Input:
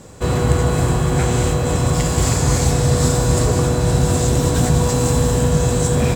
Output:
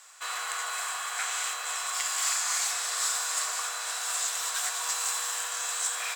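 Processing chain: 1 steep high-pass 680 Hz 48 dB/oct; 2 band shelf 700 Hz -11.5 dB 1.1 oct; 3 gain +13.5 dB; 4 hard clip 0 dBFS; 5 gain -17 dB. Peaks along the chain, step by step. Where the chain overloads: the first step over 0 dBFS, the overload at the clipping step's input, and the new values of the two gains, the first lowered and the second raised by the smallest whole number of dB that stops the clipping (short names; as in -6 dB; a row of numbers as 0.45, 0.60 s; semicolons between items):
-11.0, -10.0, +3.5, 0.0, -17.0 dBFS; step 3, 3.5 dB; step 3 +9.5 dB, step 5 -13 dB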